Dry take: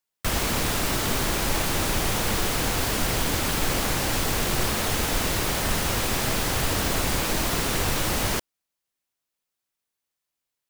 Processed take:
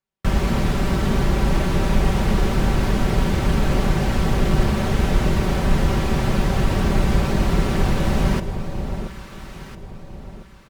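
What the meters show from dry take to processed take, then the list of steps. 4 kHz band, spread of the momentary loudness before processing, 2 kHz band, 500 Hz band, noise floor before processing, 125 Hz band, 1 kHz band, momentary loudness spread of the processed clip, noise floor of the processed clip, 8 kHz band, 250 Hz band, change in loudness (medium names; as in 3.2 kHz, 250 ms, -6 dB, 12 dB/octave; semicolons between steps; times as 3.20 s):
-5.0 dB, 0 LU, -1.0 dB, +4.5 dB, -85 dBFS, +9.5 dB, +2.0 dB, 17 LU, -40 dBFS, -10.0 dB, +8.5 dB, +3.0 dB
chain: high-pass 87 Hz 6 dB/octave; RIAA curve playback; comb 5.2 ms, depth 49%; echo whose repeats swap between lows and highs 676 ms, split 950 Hz, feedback 55%, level -7 dB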